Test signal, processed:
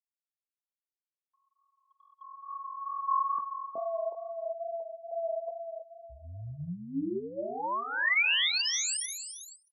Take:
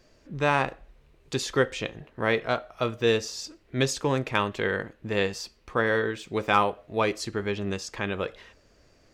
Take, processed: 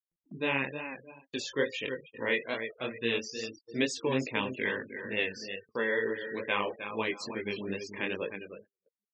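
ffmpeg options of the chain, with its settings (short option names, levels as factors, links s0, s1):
-filter_complex "[0:a]aphaser=in_gain=1:out_gain=1:delay=2.2:decay=0.28:speed=0.25:type=sinusoidal,asplit=2[s0][s1];[s1]aecho=0:1:310|620|930|1240:0.355|0.135|0.0512|0.0195[s2];[s0][s2]amix=inputs=2:normalize=0,flanger=delay=17.5:depth=5.9:speed=2.3,afftfilt=real='re*gte(hypot(re,im),0.0158)':imag='im*gte(hypot(re,im),0.0158)':win_size=1024:overlap=0.75,agate=range=0.00501:threshold=0.00708:ratio=16:detection=peak,highpass=200,equalizer=f=250:t=q:w=4:g=5,equalizer=f=720:t=q:w=4:g=-8,equalizer=f=1300:t=q:w=4:g=-10,equalizer=f=2000:t=q:w=4:g=6,equalizer=f=2800:t=q:w=4:g=8,lowpass=f=8900:w=0.5412,lowpass=f=8900:w=1.3066,acompressor=mode=upward:threshold=0.00562:ratio=2.5,volume=0.668"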